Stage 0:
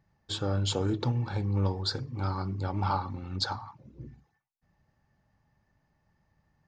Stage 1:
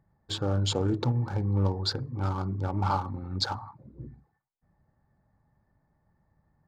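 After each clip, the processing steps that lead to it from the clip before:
adaptive Wiener filter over 15 samples
level +2 dB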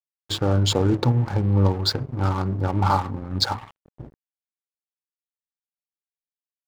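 dead-zone distortion −43.5 dBFS
level +8 dB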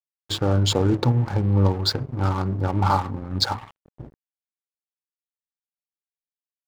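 no processing that can be heard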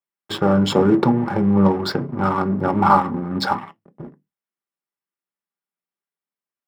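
convolution reverb RT60 0.15 s, pre-delay 3 ms, DRR 7.5 dB
level −2 dB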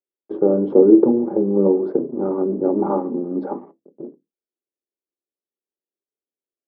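flat-topped band-pass 380 Hz, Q 1.5
level +6.5 dB

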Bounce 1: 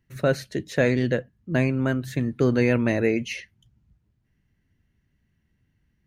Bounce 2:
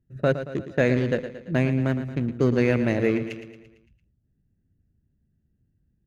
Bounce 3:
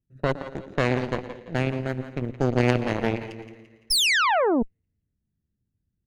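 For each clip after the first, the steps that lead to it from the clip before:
adaptive Wiener filter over 41 samples; on a send: repeating echo 113 ms, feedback 53%, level −11 dB
echo with a time of its own for lows and highs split 320 Hz, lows 122 ms, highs 170 ms, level −8 dB; sound drawn into the spectrogram fall, 0:03.90–0:04.63, 210–5,600 Hz −16 dBFS; harmonic generator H 3 −11 dB, 5 −37 dB, 6 −22 dB, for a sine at −6.5 dBFS; level +3 dB

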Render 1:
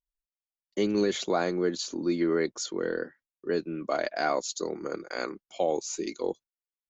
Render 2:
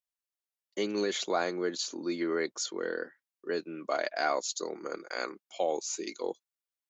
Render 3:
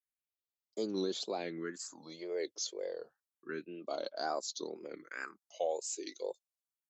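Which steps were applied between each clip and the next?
high-pass filter 550 Hz 6 dB per octave
all-pass phaser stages 4, 0.29 Hz, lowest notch 190–2,300 Hz; tape wow and flutter 140 cents; level −4.5 dB

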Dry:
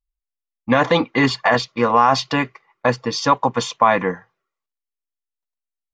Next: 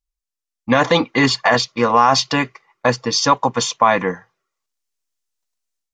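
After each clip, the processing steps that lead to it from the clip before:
parametric band 6,300 Hz +8 dB 1.2 octaves
automatic gain control gain up to 9 dB
level −1 dB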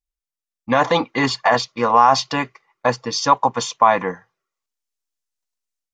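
dynamic equaliser 850 Hz, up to +7 dB, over −26 dBFS, Q 1.2
level −5 dB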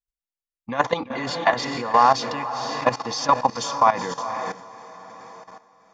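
feedback delay with all-pass diffusion 464 ms, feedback 42%, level −7 dB
output level in coarse steps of 14 dB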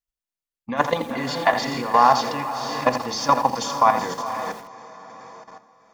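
on a send at −16 dB: convolution reverb RT60 0.55 s, pre-delay 3 ms
on the sum: feedback echo at a low word length 83 ms, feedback 35%, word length 6 bits, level −10 dB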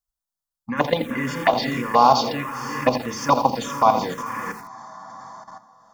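phaser swept by the level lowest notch 400 Hz, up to 1,800 Hz, full sweep at −15 dBFS
level +4 dB

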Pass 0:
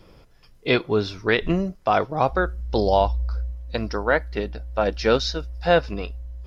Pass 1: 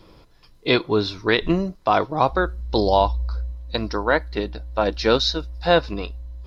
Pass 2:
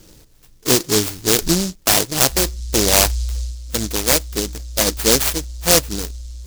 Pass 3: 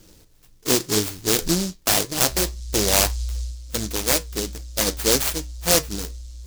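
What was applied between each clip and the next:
thirty-one-band graphic EQ 315 Hz +5 dB, 1,000 Hz +6 dB, 4,000 Hz +9 dB
short delay modulated by noise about 5,500 Hz, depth 0.32 ms; level +3 dB
flanger 1.9 Hz, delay 9.2 ms, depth 3 ms, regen −70%

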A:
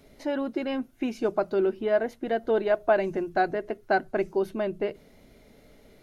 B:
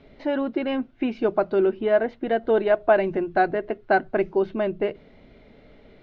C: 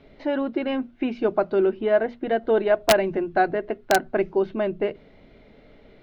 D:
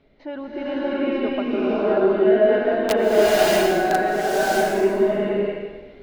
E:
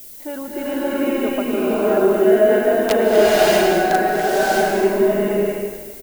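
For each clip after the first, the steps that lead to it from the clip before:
low-pass filter 3,700 Hz 24 dB per octave; level +4 dB
wrap-around overflow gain 8.5 dB; mains-hum notches 60/120/180/240 Hz
slow-attack reverb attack 640 ms, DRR −10.5 dB; level −7.5 dB
background noise violet −41 dBFS; single-tap delay 244 ms −11.5 dB; level +2.5 dB

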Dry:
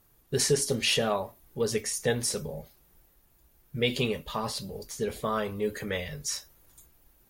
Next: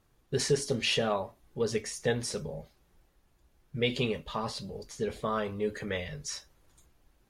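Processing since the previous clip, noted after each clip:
high-frequency loss of the air 60 metres
level −1.5 dB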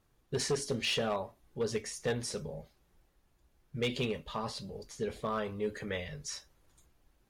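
hard clipping −22.5 dBFS, distortion −17 dB
level −3 dB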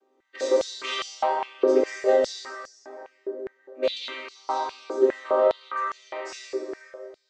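channel vocoder with a chord as carrier minor triad, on C4
dense smooth reverb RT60 3.2 s, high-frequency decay 0.45×, DRR −5 dB
high-pass on a step sequencer 4.9 Hz 390–5,700 Hz
level +5.5 dB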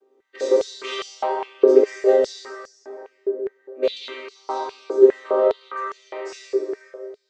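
parametric band 420 Hz +12.5 dB 0.39 octaves
level −1 dB

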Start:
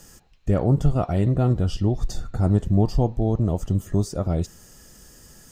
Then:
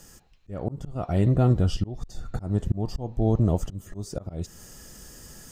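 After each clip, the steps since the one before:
speech leveller 2 s
volume swells 317 ms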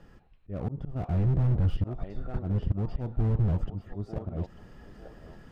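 high-frequency loss of the air 430 metres
feedback echo with a high-pass in the loop 893 ms, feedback 47%, high-pass 690 Hz, level −10.5 dB
slew-rate limiting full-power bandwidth 11 Hz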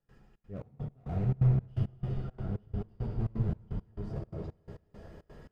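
convolution reverb RT60 3.8 s, pre-delay 3 ms, DRR −2.5 dB
gate pattern ".xxx.xx..x." 170 BPM −24 dB
level −7 dB

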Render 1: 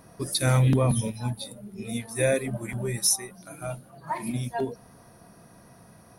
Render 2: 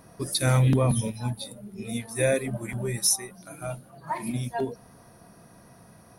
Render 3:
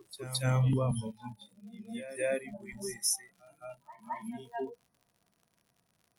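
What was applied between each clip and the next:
no processing that can be heard
noise reduction from a noise print of the clip's start 18 dB; surface crackle 100 per second −45 dBFS; backwards echo 217 ms −13.5 dB; level −7.5 dB

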